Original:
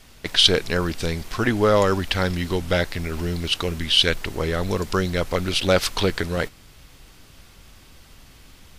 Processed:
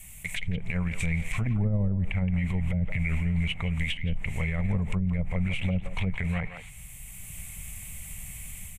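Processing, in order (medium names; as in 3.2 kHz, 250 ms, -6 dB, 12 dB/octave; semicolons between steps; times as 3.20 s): time-frequency box 6.33–6.69 s, 690–4600 Hz +8 dB; level rider gain up to 5.5 dB; low-pass that closes with the level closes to 320 Hz, closed at -12.5 dBFS; FFT filter 180 Hz 0 dB, 330 Hz -24 dB, 670 Hz -10 dB, 1.5 kHz -16 dB, 2.2 kHz +3 dB, 4.9 kHz -20 dB, 7.8 kHz +11 dB; speakerphone echo 170 ms, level -12 dB; dynamic bell 2.2 kHz, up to +7 dB, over -52 dBFS, Q 4.1; peak limiter -21.5 dBFS, peak gain reduction 11 dB; attacks held to a fixed rise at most 580 dB/s; trim +2 dB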